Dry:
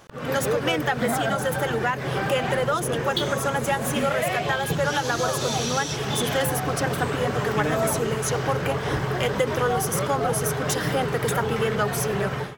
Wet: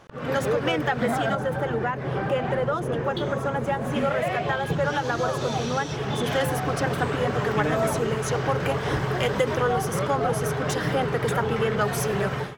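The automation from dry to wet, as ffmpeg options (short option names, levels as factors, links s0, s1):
-af "asetnsamples=n=441:p=0,asendcmd='1.35 lowpass f 1100;3.92 lowpass f 1900;6.26 lowpass f 4100;8.6 lowpass f 8300;9.55 lowpass f 3600;11.81 lowpass f 9100',lowpass=f=3000:p=1"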